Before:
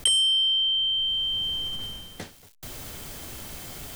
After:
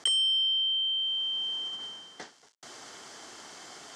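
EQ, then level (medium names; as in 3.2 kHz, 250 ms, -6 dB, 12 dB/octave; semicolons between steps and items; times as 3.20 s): cabinet simulation 440–6800 Hz, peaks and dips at 550 Hz -7 dB, 2.5 kHz -10 dB, 3.8 kHz -6 dB; 0.0 dB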